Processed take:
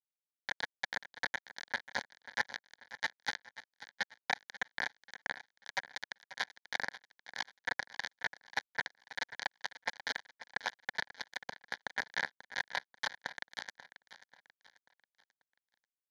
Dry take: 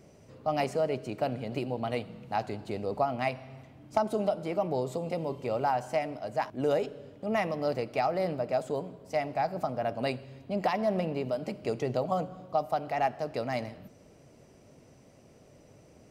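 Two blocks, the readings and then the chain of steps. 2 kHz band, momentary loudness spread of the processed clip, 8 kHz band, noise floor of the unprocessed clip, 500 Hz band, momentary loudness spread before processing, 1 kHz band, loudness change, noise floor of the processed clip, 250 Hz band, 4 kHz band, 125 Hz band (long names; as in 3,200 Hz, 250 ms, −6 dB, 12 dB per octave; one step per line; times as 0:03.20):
+5.5 dB, 9 LU, can't be measured, −57 dBFS, −23.5 dB, 7 LU, −12.5 dB, −8.0 dB, below −85 dBFS, −24.5 dB, +3.5 dB, −25.5 dB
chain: partials spread apart or drawn together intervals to 124%
reversed playback
downward compressor 12 to 1, threshold −42 dBFS, peak gain reduction 17.5 dB
reversed playback
bit-depth reduction 6 bits, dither none
loudspeaker in its box 290–7,700 Hz, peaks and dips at 650 Hz −9 dB, 1,700 Hz +9 dB, 5,200 Hz −5 dB
phaser with its sweep stopped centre 1,800 Hz, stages 8
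on a send: repeating echo 538 ms, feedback 41%, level −15 dB
on the sum: level +14.5 dB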